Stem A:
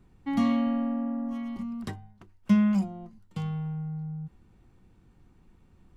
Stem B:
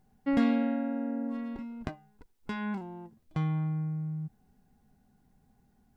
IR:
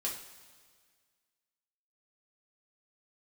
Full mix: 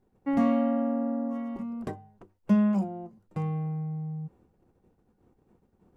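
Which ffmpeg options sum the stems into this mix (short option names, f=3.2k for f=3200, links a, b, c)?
-filter_complex "[0:a]equalizer=f=125:t=o:w=1:g=-4,equalizer=f=500:t=o:w=1:g=10,equalizer=f=2k:t=o:w=1:g=-5,equalizer=f=4k:t=o:w=1:g=-7,agate=range=-16dB:threshold=-56dB:ratio=16:detection=peak,highpass=88,volume=-0.5dB[a];[1:a]volume=-1,volume=-6.5dB[b];[a][b]amix=inputs=2:normalize=0,highshelf=f=4.3k:g=-6.5"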